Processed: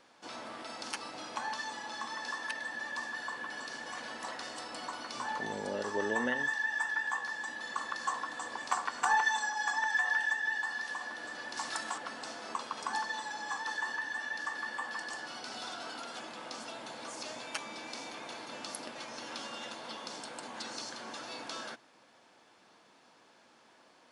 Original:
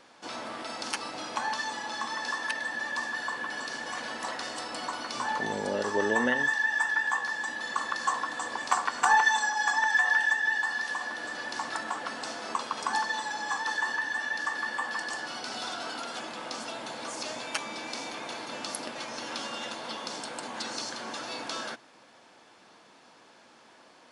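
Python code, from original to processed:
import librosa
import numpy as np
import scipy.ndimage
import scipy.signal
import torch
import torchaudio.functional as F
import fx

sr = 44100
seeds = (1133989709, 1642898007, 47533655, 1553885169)

y = fx.high_shelf(x, sr, hz=3300.0, db=10.5, at=(11.57, 11.98))
y = F.gain(torch.from_numpy(y), -6.0).numpy()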